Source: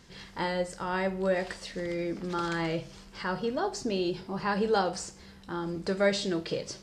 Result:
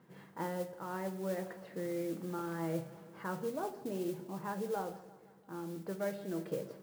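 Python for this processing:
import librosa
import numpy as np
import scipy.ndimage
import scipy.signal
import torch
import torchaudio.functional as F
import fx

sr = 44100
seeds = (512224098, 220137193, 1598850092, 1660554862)

p1 = scipy.signal.sosfilt(scipy.signal.butter(4, 130.0, 'highpass', fs=sr, output='sos'), x)
p2 = p1 + fx.echo_feedback(p1, sr, ms=170, feedback_pct=54, wet_db=-18.5, dry=0)
p3 = fx.rider(p2, sr, range_db=5, speed_s=0.5)
p4 = scipy.signal.sosfilt(scipy.signal.butter(2, 1300.0, 'lowpass', fs=sr, output='sos'), p3)
p5 = fx.mod_noise(p4, sr, seeds[0], snr_db=18)
p6 = fx.room_shoebox(p5, sr, seeds[1], volume_m3=3600.0, walls='furnished', distance_m=0.61)
y = p6 * librosa.db_to_amplitude(-8.0)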